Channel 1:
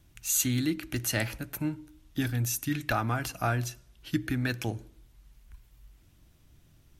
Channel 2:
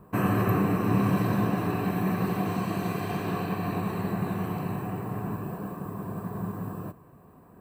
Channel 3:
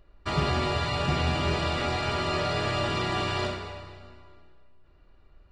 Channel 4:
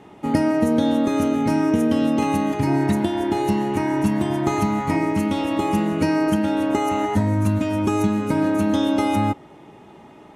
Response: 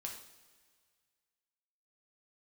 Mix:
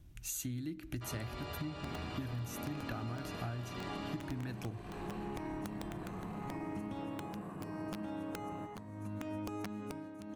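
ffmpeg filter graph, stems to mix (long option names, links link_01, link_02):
-filter_complex "[0:a]lowshelf=frequency=450:gain=10.5,volume=-6.5dB[link_01];[1:a]asoftclip=type=tanh:threshold=-29.5dB,lowpass=frequency=11000:width=0.5412,lowpass=frequency=11000:width=1.3066,alimiter=level_in=10dB:limit=-24dB:level=0:latency=1,volume=-10dB,adelay=1750,volume=-5.5dB[link_02];[2:a]adelay=750,volume=-10dB[link_03];[3:a]acrossover=split=100|2100[link_04][link_05][link_06];[link_04]acompressor=threshold=-41dB:ratio=4[link_07];[link_05]acompressor=threshold=-25dB:ratio=4[link_08];[link_06]acompressor=threshold=-50dB:ratio=4[link_09];[link_07][link_08][link_09]amix=inputs=3:normalize=0,aeval=exprs='(mod(7.08*val(0)+1,2)-1)/7.08':channel_layout=same,tremolo=f=0.76:d=0.82,adelay=1600,volume=-7.5dB[link_10];[link_01][link_02][link_03][link_10]amix=inputs=4:normalize=0,acompressor=threshold=-38dB:ratio=6"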